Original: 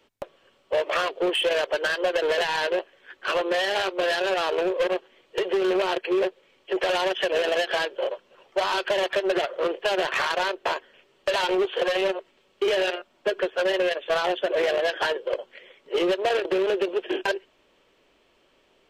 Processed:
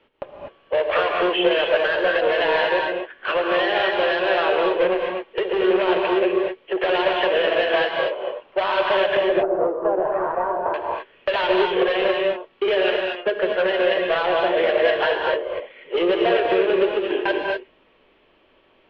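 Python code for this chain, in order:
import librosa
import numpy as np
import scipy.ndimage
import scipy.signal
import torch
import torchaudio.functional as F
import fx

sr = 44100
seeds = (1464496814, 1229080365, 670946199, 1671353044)

y = fx.lowpass(x, sr, hz=fx.steps((0.0, 3200.0), (9.17, 1100.0), (10.74, 3300.0)), slope=24)
y = fx.rev_gated(y, sr, seeds[0], gate_ms=270, shape='rising', drr_db=0.5)
y = y * librosa.db_to_amplitude(2.5)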